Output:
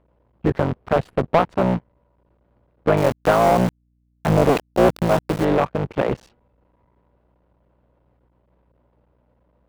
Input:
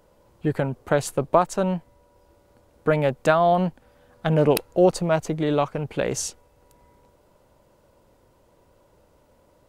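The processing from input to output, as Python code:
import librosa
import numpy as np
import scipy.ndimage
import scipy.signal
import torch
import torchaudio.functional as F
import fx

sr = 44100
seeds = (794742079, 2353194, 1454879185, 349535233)

y = fx.cycle_switch(x, sr, every=3, mode='muted')
y = fx.highpass(y, sr, hz=63.0, slope=6)
y = fx.air_absorb(y, sr, metres=430.0)
y = fx.sample_gate(y, sr, floor_db=-31.5, at=(2.97, 5.45))
y = fx.add_hum(y, sr, base_hz=60, snr_db=32)
y = fx.leveller(y, sr, passes=2)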